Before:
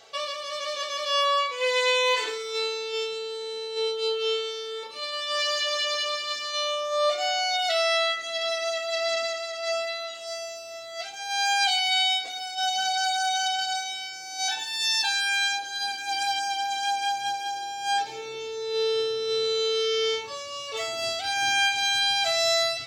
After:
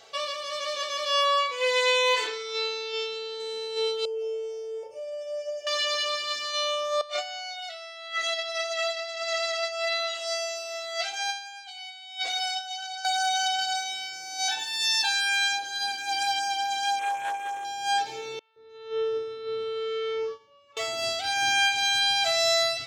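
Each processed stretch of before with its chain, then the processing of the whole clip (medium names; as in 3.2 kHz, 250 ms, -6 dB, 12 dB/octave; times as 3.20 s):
2.27–3.40 s: low-pass 6.2 kHz 24 dB/octave + peaking EQ 220 Hz -4.5 dB 2.3 oct
4.05–5.67 s: FFT filter 130 Hz 0 dB, 180 Hz -22 dB, 680 Hz +12 dB, 1.1 kHz -22 dB, 1.6 kHz -20 dB, 4.6 kHz +13 dB, 7.4 kHz -7 dB, 15 kHz -13 dB + compression 4:1, threshold -25 dBFS + Butterworth band-stop 4 kHz, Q 0.66
7.01–13.05 s: frequency weighting A + compressor with a negative ratio -31 dBFS, ratio -0.5
16.99–17.65 s: Chebyshev band-stop 2.5–7.8 kHz + loudspeaker Doppler distortion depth 0.14 ms
18.39–20.77 s: FFT filter 460 Hz 0 dB, 1.3 kHz +2 dB, 4.6 kHz -12 dB, 14 kHz -23 dB + three bands offset in time mids, lows, highs 170/300 ms, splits 820/4800 Hz + upward expansion 2.5:1, over -39 dBFS
whole clip: none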